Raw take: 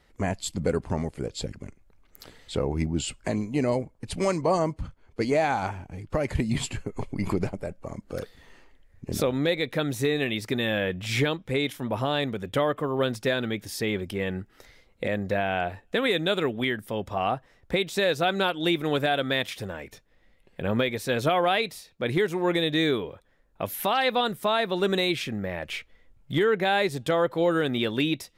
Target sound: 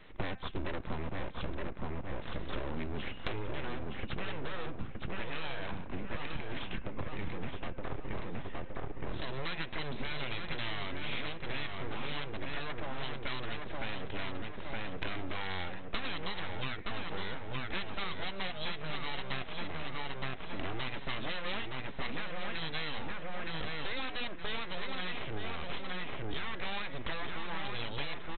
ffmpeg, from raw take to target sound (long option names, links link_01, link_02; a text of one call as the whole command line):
ffmpeg -i in.wav -filter_complex "[0:a]acrossover=split=110|1300[link_01][link_02][link_03];[link_01]acrusher=samples=35:mix=1:aa=0.000001[link_04];[link_02]asoftclip=type=tanh:threshold=-30.5dB[link_05];[link_04][link_05][link_03]amix=inputs=3:normalize=0,bandreject=frequency=259.4:width_type=h:width=4,bandreject=frequency=518.8:width_type=h:width=4,bandreject=frequency=778.2:width_type=h:width=4,bandreject=frequency=1037.6:width_type=h:width=4,bandreject=frequency=1297:width_type=h:width=4,bandreject=frequency=1556.4:width_type=h:width=4,bandreject=frequency=1815.8:width_type=h:width=4,bandreject=frequency=2075.2:width_type=h:width=4,bandreject=frequency=2334.6:width_type=h:width=4,bandreject=frequency=2594:width_type=h:width=4,bandreject=frequency=2853.4:width_type=h:width=4,aresample=8000,aeval=exprs='abs(val(0))':channel_layout=same,aresample=44100,asplit=2[link_06][link_07];[link_07]adelay=918,lowpass=frequency=2600:poles=1,volume=-4dB,asplit=2[link_08][link_09];[link_09]adelay=918,lowpass=frequency=2600:poles=1,volume=0.35,asplit=2[link_10][link_11];[link_11]adelay=918,lowpass=frequency=2600:poles=1,volume=0.35,asplit=2[link_12][link_13];[link_13]adelay=918,lowpass=frequency=2600:poles=1,volume=0.35[link_14];[link_06][link_08][link_10][link_12][link_14]amix=inputs=5:normalize=0,acompressor=threshold=-40dB:ratio=10,volume=9.5dB" out.wav